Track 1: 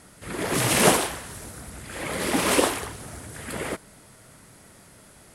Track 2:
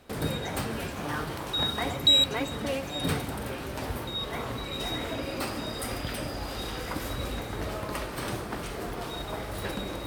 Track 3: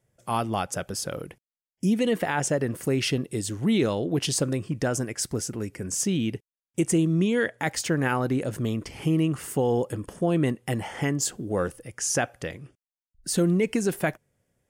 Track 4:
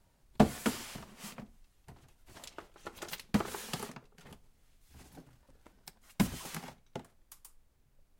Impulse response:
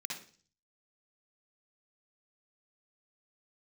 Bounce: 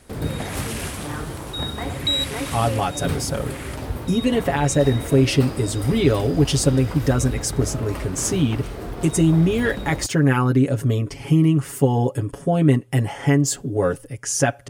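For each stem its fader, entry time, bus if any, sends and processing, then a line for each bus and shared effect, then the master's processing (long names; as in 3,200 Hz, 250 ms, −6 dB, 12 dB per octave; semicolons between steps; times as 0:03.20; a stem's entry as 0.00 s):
−3.0 dB, 0.00 s, no send, high-pass filter 1,200 Hz; downward compressor, threshold −28 dBFS, peak gain reduction 10 dB
−2.0 dB, 0.00 s, no send, low-shelf EQ 390 Hz +11 dB
+1.0 dB, 2.25 s, no send, low-shelf EQ 380 Hz +7.5 dB; comb filter 7.2 ms, depth 82%
−7.0 dB, 0.00 s, no send, no processing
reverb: not used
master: parametric band 190 Hz −3.5 dB 0.95 octaves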